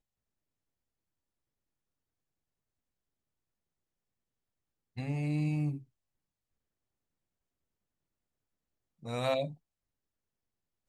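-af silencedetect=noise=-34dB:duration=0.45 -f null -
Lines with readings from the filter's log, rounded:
silence_start: 0.00
silence_end: 4.98 | silence_duration: 4.98
silence_start: 5.76
silence_end: 9.07 | silence_duration: 3.31
silence_start: 9.47
silence_end: 10.88 | silence_duration: 1.41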